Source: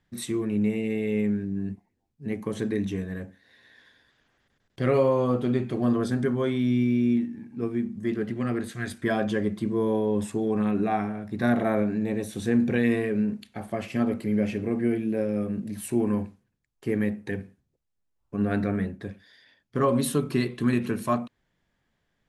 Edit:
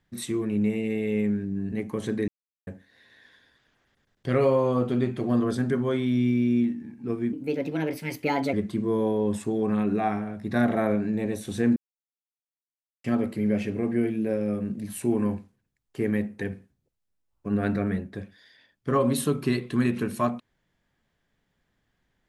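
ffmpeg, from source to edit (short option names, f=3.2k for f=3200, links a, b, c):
-filter_complex "[0:a]asplit=8[a][b][c][d][e][f][g][h];[a]atrim=end=1.722[i];[b]atrim=start=2.248:end=2.81,asetpts=PTS-STARTPTS,afade=t=out:st=0.558:d=0.004:c=hsin[j];[c]atrim=start=2.81:end=3.2,asetpts=PTS-STARTPTS,volume=0[k];[d]atrim=start=3.2:end=7.864,asetpts=PTS-STARTPTS,afade=t=in:d=0.004:c=hsin[l];[e]atrim=start=7.86:end=9.41,asetpts=PTS-STARTPTS,asetrate=56889,aresample=44100,atrim=end_sample=52988,asetpts=PTS-STARTPTS[m];[f]atrim=start=9.406:end=12.64,asetpts=PTS-STARTPTS,afade=t=out:st=3.23:d=0.004:c=hsin[n];[g]atrim=start=12.64:end=13.92,asetpts=PTS-STARTPTS,volume=0[o];[h]atrim=start=13.92,asetpts=PTS-STARTPTS,afade=t=in:d=0.004:c=hsin[p];[j][k][l]concat=n=3:v=0:a=1[q];[i][q]acrossfade=d=0.004:c1=hsin:c2=hsin[r];[r][m]acrossfade=d=0.004:c1=hsin:c2=hsin[s];[n][o][p]concat=n=3:v=0:a=1[t];[s][t]acrossfade=d=0.004:c1=hsin:c2=hsin"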